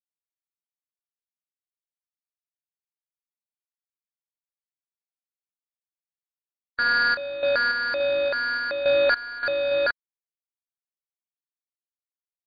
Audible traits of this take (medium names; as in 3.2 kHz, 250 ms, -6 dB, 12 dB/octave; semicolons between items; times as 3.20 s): a quantiser's noise floor 6-bit, dither none; random-step tremolo 3.5 Hz, depth 90%; aliases and images of a low sample rate 3.1 kHz, jitter 0%; MP2